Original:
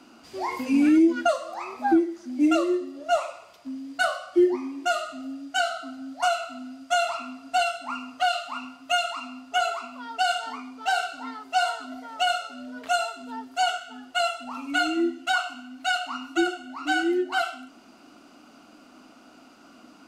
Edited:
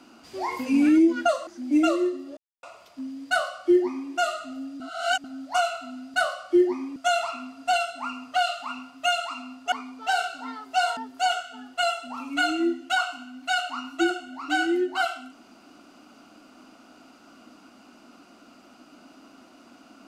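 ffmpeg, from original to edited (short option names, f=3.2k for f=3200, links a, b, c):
-filter_complex "[0:a]asplit=10[a][b][c][d][e][f][g][h][i][j];[a]atrim=end=1.472[k];[b]atrim=start=2.148:end=3.05,asetpts=PTS-STARTPTS,afade=t=out:st=0.898:d=0.004:c=hsin[l];[c]atrim=start=3.05:end=3.31,asetpts=PTS-STARTPTS,volume=0[m];[d]atrim=start=3.31:end=5.482,asetpts=PTS-STARTPTS,afade=t=in:d=0.004:c=hsin[n];[e]atrim=start=5.478:end=5.922,asetpts=PTS-STARTPTS,areverse[o];[f]atrim=start=5.918:end=6.822[p];[g]atrim=start=3.968:end=4.792[q];[h]atrim=start=6.818:end=9.582[r];[i]atrim=start=10.508:end=11.762[s];[j]atrim=start=13.338[t];[l][m][n]concat=n=3:v=0:a=1[u];[k][u]acrossfade=d=0.004:c1=hsin:c2=hsin[v];[v][o]acrossfade=d=0.004:c1=hsin:c2=hsin[w];[w][p]acrossfade=d=0.004:c1=hsin:c2=hsin[x];[x][q]acrossfade=d=0.004:c1=hsin:c2=hsin[y];[y][r]acrossfade=d=0.004:c1=hsin:c2=hsin[z];[z][s]acrossfade=d=0.004:c1=hsin:c2=hsin[aa];[aa][t]acrossfade=d=0.004:c1=hsin:c2=hsin"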